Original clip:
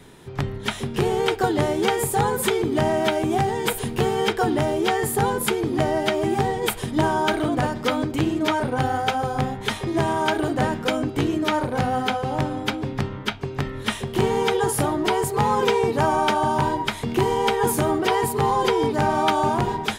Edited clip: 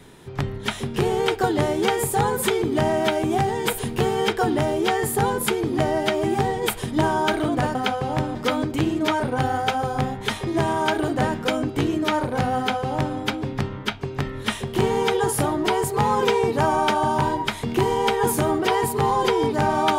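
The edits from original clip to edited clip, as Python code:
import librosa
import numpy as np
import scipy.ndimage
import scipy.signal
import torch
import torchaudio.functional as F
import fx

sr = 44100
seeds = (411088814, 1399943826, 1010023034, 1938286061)

y = fx.edit(x, sr, fx.duplicate(start_s=11.97, length_s=0.6, to_s=7.75), tone=tone)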